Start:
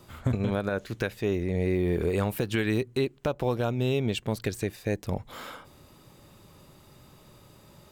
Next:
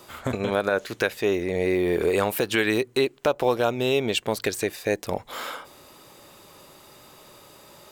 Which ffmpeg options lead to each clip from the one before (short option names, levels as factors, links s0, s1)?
-af "bass=f=250:g=-15,treble=f=4000:g=1,volume=2.51"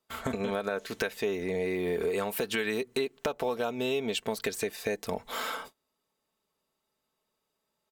-af "agate=range=0.0224:threshold=0.00708:ratio=16:detection=peak,aecho=1:1:4.5:0.51,acompressor=threshold=0.0316:ratio=3"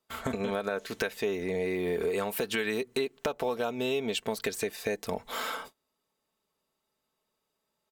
-af anull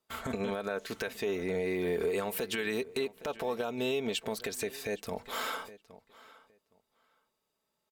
-filter_complex "[0:a]asplit=2[s0][s1];[s1]adelay=815,lowpass=f=4500:p=1,volume=0.1,asplit=2[s2][s3];[s3]adelay=815,lowpass=f=4500:p=1,volume=0.17[s4];[s0][s2][s4]amix=inputs=3:normalize=0,alimiter=limit=0.0841:level=0:latency=1:release=47,volume=0.891"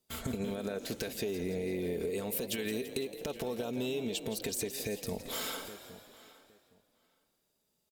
-filter_complex "[0:a]equalizer=f=1200:t=o:w=2.4:g=-14.5,acompressor=threshold=0.0112:ratio=6,asplit=2[s0][s1];[s1]asplit=7[s2][s3][s4][s5][s6][s7][s8];[s2]adelay=168,afreqshift=43,volume=0.251[s9];[s3]adelay=336,afreqshift=86,volume=0.148[s10];[s4]adelay=504,afreqshift=129,volume=0.0871[s11];[s5]adelay=672,afreqshift=172,volume=0.0519[s12];[s6]adelay=840,afreqshift=215,volume=0.0305[s13];[s7]adelay=1008,afreqshift=258,volume=0.018[s14];[s8]adelay=1176,afreqshift=301,volume=0.0106[s15];[s9][s10][s11][s12][s13][s14][s15]amix=inputs=7:normalize=0[s16];[s0][s16]amix=inputs=2:normalize=0,volume=2.24"